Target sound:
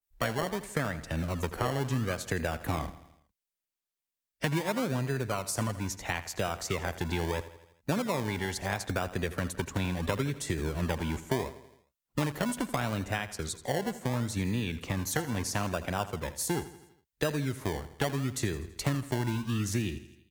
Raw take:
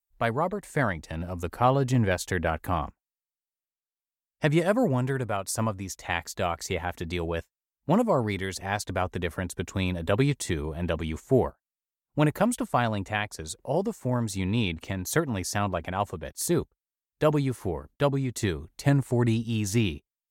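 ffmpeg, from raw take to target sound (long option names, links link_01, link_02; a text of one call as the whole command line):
ffmpeg -i in.wav -filter_complex "[0:a]acrossover=split=150|890[link_01][link_02][link_03];[link_02]acrusher=samples=28:mix=1:aa=0.000001:lfo=1:lforange=16.8:lforate=0.74[link_04];[link_01][link_04][link_03]amix=inputs=3:normalize=0,acompressor=threshold=-30dB:ratio=6,aecho=1:1:82|164|246|328|410:0.178|0.096|0.0519|0.028|0.0151,adynamicequalizer=threshold=0.00251:dfrequency=1900:dqfactor=0.7:tfrequency=1900:tqfactor=0.7:attack=5:release=100:ratio=0.375:range=1.5:mode=cutabove:tftype=highshelf,volume=3dB" out.wav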